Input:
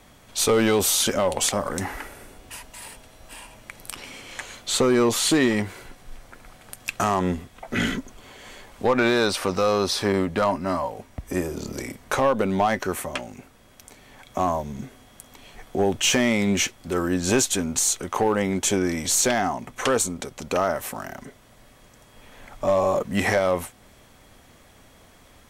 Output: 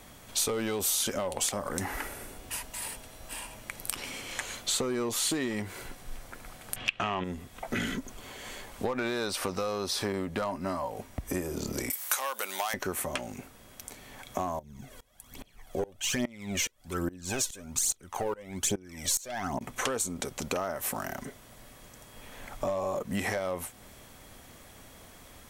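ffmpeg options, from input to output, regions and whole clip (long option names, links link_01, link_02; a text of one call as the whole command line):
ffmpeg -i in.wav -filter_complex "[0:a]asettb=1/sr,asplit=3[link_01][link_02][link_03];[link_01]atrim=end=6.764[link_04];[link_02]atrim=start=6.76:end=7.24,asetpts=PTS-STARTPTS,afade=type=in:duration=0.004:curve=qsin,afade=type=out:start_time=0.476:duration=0.004:curve=qsin,acontrast=62,lowpass=frequency=2900:width_type=q:width=3.7[link_05];[link_03]atrim=start=7.236[link_06];[link_04][link_05]acrossfade=duration=0.004:curve1=hsin:curve2=qsin[link_07];[link_07][link_06]acrossfade=duration=0.004:curve1=qsin:curve2=hsin,asettb=1/sr,asplit=3[link_08][link_09][link_10];[link_08]atrim=end=11.904[link_11];[link_09]atrim=start=11.9:end=12.74,asetpts=PTS-STARTPTS,afade=type=in:duration=0.004:curve=qsin,afade=type=out:start_time=0.836:duration=0.004:curve=qsin,highpass=990,aemphasis=mode=production:type=75fm,acompressor=mode=upward:threshold=-35dB:ratio=2.5:attack=3.2:release=140:knee=2.83:detection=peak[link_12];[link_10]atrim=start=12.736[link_13];[link_11][link_12]acrossfade=duration=0.004:curve1=hsin:curve2=qsin[link_14];[link_14][link_13]acrossfade=duration=0.004:curve1=qsin:curve2=hsin,asettb=1/sr,asplit=3[link_15][link_16][link_17];[link_15]atrim=end=14.594[link_18];[link_16]atrim=start=14.59:end=19.61,asetpts=PTS-STARTPTS,afade=type=in:duration=0.004:curve=qsin,afade=type=out:start_time=5.016:duration=0.004:curve=qsin,aphaser=in_gain=1:out_gain=1:delay=2.2:decay=0.64:speed=1.2:type=triangular,aeval=exprs='val(0)*pow(10,-24*if(lt(mod(-2.4*n/s,1),2*abs(-2.4)/1000),1-mod(-2.4*n/s,1)/(2*abs(-2.4)/1000),(mod(-2.4*n/s,1)-2*abs(-2.4)/1000)/(1-2*abs(-2.4)/1000))/20)':channel_layout=same[link_19];[link_17]atrim=start=19.606[link_20];[link_18][link_19]acrossfade=duration=0.004:curve1=hsin:curve2=qsin[link_21];[link_21][link_20]acrossfade=duration=0.004:curve1=qsin:curve2=hsin,acompressor=threshold=-29dB:ratio=6,highshelf=frequency=8900:gain=8" out.wav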